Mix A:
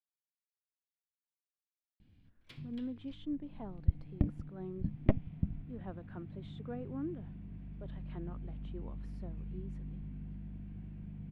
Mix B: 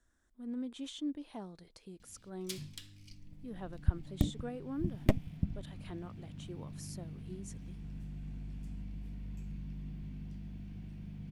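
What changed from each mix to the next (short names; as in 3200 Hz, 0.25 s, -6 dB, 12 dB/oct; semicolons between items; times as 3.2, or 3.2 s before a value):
speech: entry -2.25 s; master: remove air absorption 480 m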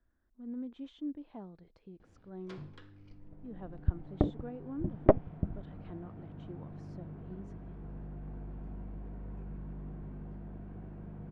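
background: add band shelf 750 Hz +15 dB 2.6 oct; master: add tape spacing loss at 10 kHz 39 dB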